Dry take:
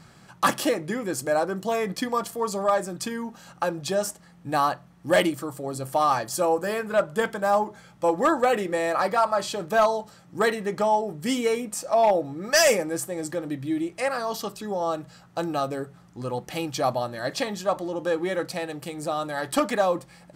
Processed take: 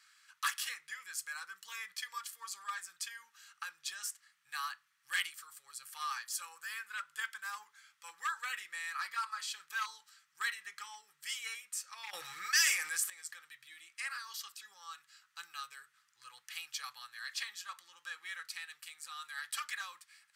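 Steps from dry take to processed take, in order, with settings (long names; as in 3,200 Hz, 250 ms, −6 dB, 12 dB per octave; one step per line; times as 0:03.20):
inverse Chebyshev high-pass filter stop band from 700 Hz, stop band 40 dB
0:12.13–0:13.10: envelope flattener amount 50%
level −7 dB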